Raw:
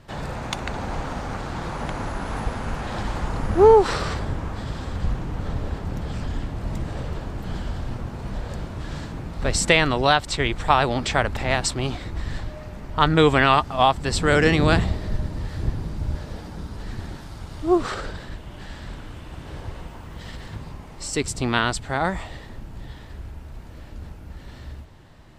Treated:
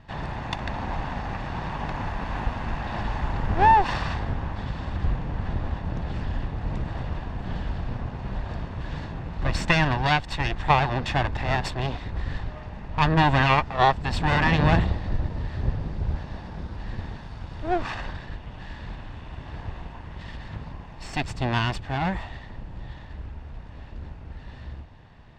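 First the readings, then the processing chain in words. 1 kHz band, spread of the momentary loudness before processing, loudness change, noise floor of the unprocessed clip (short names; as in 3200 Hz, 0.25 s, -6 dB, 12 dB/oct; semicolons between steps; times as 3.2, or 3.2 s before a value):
-0.5 dB, 22 LU, -3.0 dB, -41 dBFS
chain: minimum comb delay 1.1 ms; LPF 3600 Hz 12 dB/oct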